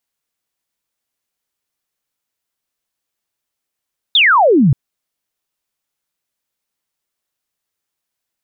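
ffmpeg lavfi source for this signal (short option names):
-f lavfi -i "aevalsrc='0.447*clip(t/0.002,0,1)*clip((0.58-t)/0.002,0,1)*sin(2*PI*3800*0.58/log(120/3800)*(exp(log(120/3800)*t/0.58)-1))':d=0.58:s=44100"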